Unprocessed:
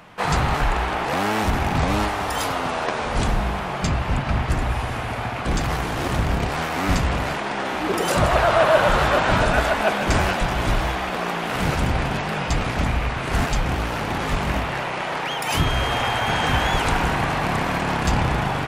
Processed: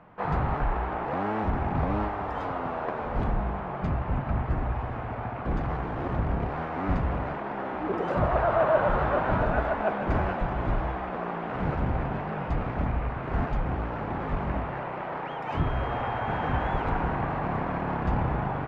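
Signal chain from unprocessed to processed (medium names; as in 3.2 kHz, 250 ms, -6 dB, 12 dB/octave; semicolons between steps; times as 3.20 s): low-pass 1.3 kHz 12 dB/octave; trim -5.5 dB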